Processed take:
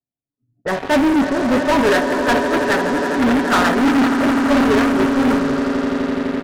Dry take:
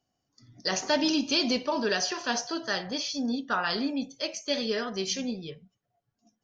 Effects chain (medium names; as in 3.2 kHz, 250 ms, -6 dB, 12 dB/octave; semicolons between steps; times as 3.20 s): steep low-pass 1.9 kHz 96 dB/octave; echo with a slow build-up 84 ms, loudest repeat 8, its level -11 dB; gate -26 dBFS, range -11 dB; comb 7.3 ms, depth 36%; waveshaping leveller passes 5; in parallel at -6 dB: wavefolder -25 dBFS; on the sum: level-controlled noise filter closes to 470 Hz, open at -23.5 dBFS; loudspeaker Doppler distortion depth 0.16 ms; trim +3.5 dB